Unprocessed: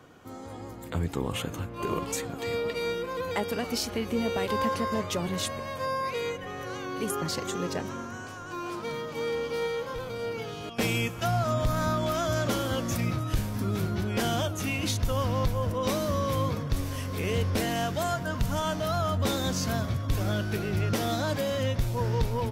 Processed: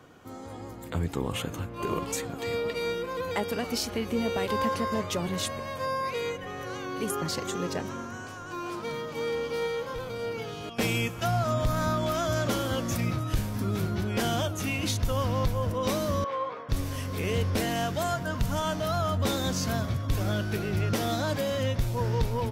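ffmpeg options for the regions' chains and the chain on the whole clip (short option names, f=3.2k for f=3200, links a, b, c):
-filter_complex "[0:a]asettb=1/sr,asplit=3[a][b][c];[a]atrim=end=16.244[d];[b]atrim=start=16.24:end=16.69,asetpts=PTS-STARTPTS,afade=t=in:d=0.004:c=qsin,afade=t=out:st=0.446:d=0.004:c=qsin,highpass=620,lowpass=2k,asplit=2[e][f];[f]adelay=17,volume=-5dB[g];[e][g]amix=inputs=2:normalize=0,atrim=end_sample=19845[h];[c]atrim=start=16.686[i];[d][h]acrossfade=d=0.004:c1=hsin:c2=qsin[j];[j][i]acrossfade=d=0.004:c1=qsin:c2=hsin"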